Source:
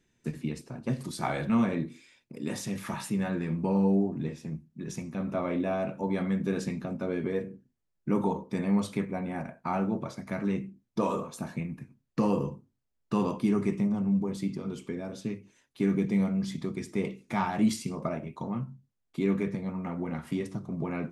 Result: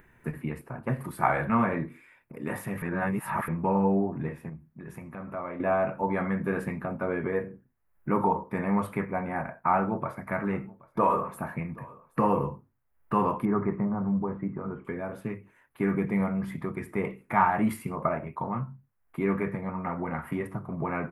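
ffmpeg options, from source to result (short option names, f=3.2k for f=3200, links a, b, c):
-filter_complex "[0:a]asettb=1/sr,asplit=3[a][b][c];[a]atrim=end=4.494[d];[b]atrim=start=4.49:end=5.6,asetpts=PTS-STARTPTS,afade=t=in:d=0.004:c=qsin,afade=t=out:st=1.106:d=0.004:c=qsin,acompressor=threshold=-42dB:ratio=2:attack=3.2:release=140:knee=1:detection=peak[e];[c]atrim=start=5.596[f];[d][e]acrossfade=d=0.004:c1=hsin:c2=qsin[g];[g][f]acrossfade=d=0.004:c1=qsin:c2=hsin,asettb=1/sr,asplit=3[h][i][j];[h]atrim=end=9.754[k];[i]atrim=start=9.75:end=12.49,asetpts=PTS-STARTPTS,afade=t=in:d=0.004:c=qsin,afade=t=out:st=2.736:d=0.004:c=qsin,aecho=1:1:776:0.0708,atrim=end_sample=120834[l];[j]atrim=start=12.486[m];[k][l]acrossfade=d=0.004:c1=hsin:c2=qsin[n];[n][m]acrossfade=d=0.004:c1=qsin:c2=hsin,asettb=1/sr,asplit=3[o][p][q];[o]atrim=end=13.454[r];[p]atrim=start=13.45:end=14.85,asetpts=PTS-STARTPTS,afade=t=in:d=0.004:c=qsin,afade=t=out:st=1.396:d=0.004:c=qsin,lowpass=f=1.7k:w=0.5412,lowpass=f=1.7k:w=1.3066[s];[q]atrim=start=14.846[t];[r][s]acrossfade=d=0.004:c1=hsin:c2=qsin[u];[u][t]acrossfade=d=0.004:c1=qsin:c2=hsin,asplit=3[v][w][x];[v]atrim=end=2.822[y];[w]atrim=start=2.818:end=3.482,asetpts=PTS-STARTPTS,areverse[z];[x]atrim=start=3.478[aa];[y][z]acrossfade=d=0.004:c1=hsin:c2=hsin[ab];[ab][aa]acrossfade=d=0.004:c1=hsin:c2=hsin,equalizer=f=240:t=o:w=1.6:g=-7.5,acompressor=mode=upward:threshold=-54dB:ratio=2.5,firequalizer=gain_entry='entry(510,0);entry(1000,5);entry(1900,2);entry(3600,-19);entry(6000,-25);entry(11000,-1)':delay=0.05:min_phase=1,volume=5.5dB"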